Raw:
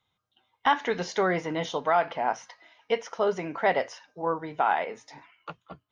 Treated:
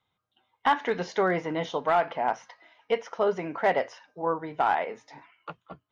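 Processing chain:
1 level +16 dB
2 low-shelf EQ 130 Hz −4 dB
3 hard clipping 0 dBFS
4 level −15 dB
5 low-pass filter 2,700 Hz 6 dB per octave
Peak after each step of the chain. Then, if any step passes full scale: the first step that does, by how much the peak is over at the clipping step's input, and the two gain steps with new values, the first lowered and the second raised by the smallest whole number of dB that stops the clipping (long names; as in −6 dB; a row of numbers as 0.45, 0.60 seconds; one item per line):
+4.0, +4.0, 0.0, −15.0, −15.0 dBFS
step 1, 4.0 dB
step 1 +12 dB, step 4 −11 dB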